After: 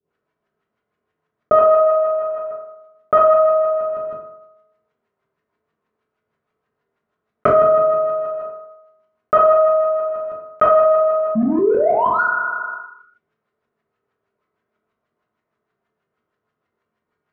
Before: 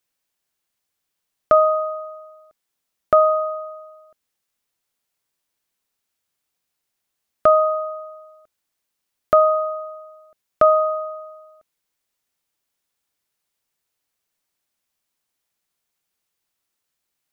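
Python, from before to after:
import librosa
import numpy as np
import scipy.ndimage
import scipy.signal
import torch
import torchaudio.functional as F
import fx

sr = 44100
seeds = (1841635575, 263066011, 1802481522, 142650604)

y = fx.highpass(x, sr, hz=120.0, slope=6)
y = fx.peak_eq(y, sr, hz=740.0, db=-5.0, octaves=0.85)
y = fx.spec_paint(y, sr, seeds[0], shape='rise', start_s=11.35, length_s=0.87, low_hz=210.0, high_hz=1500.0, level_db=-25.0)
y = fx.power_curve(y, sr, exponent=1.4)
y = fx.filter_lfo_lowpass(y, sr, shape='saw_up', hz=6.3, low_hz=290.0, high_hz=1800.0, q=1.3)
y = fx.rev_fdn(y, sr, rt60_s=0.84, lf_ratio=0.85, hf_ratio=0.5, size_ms=14.0, drr_db=-4.5)
y = fx.env_flatten(y, sr, amount_pct=70)
y = y * librosa.db_to_amplitude(-3.5)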